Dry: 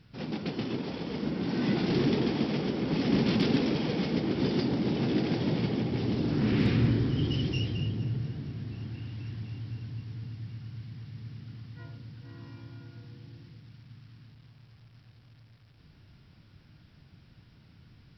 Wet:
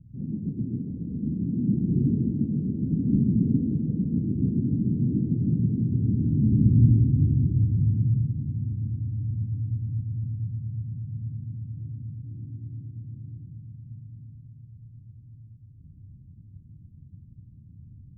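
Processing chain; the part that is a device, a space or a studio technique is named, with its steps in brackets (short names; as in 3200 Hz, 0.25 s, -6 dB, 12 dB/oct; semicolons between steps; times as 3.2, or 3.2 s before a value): the neighbour's flat through the wall (LPF 250 Hz 24 dB/oct; bell 91 Hz +6.5 dB 0.95 oct); gain +5 dB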